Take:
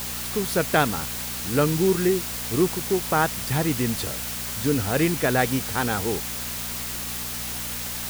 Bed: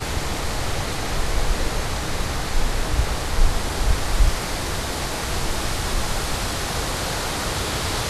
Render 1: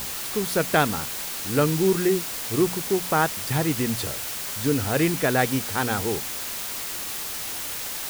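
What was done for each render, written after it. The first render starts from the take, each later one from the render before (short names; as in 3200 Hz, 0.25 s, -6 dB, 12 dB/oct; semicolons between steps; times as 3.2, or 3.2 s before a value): de-hum 60 Hz, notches 4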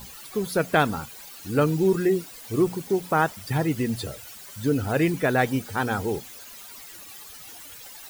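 denoiser 15 dB, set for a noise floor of -32 dBFS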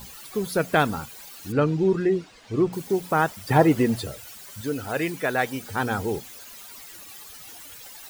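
1.52–2.73 air absorption 130 m; 3.48–3.99 bell 680 Hz +13.5 dB -> +7 dB 2.9 oct; 4.61–5.63 low shelf 310 Hz -11 dB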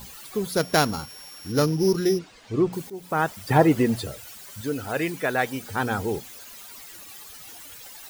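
0.56–2.19 sample sorter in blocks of 8 samples; 2.9–3.44 fade in equal-power, from -19.5 dB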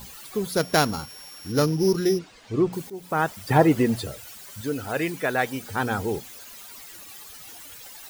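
nothing audible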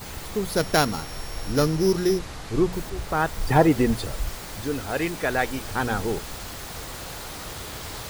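add bed -12 dB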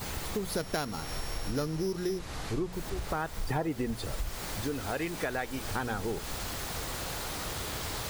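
compressor 5:1, threshold -30 dBFS, peak gain reduction 16.5 dB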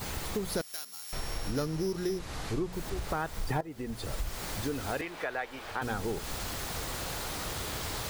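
0.61–1.13 differentiator; 3.61–4.12 fade in, from -15.5 dB; 5.01–5.82 three-band isolator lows -13 dB, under 410 Hz, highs -13 dB, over 3800 Hz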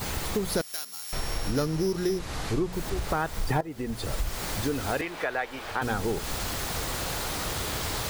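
gain +5 dB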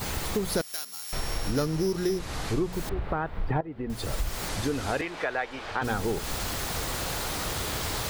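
2.89–3.9 air absorption 480 m; 4.48–5.83 LPF 11000 Hz -> 5800 Hz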